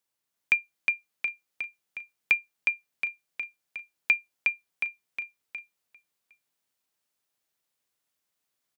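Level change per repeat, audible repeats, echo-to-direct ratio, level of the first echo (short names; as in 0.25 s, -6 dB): -4.5 dB, 4, -1.0 dB, -3.0 dB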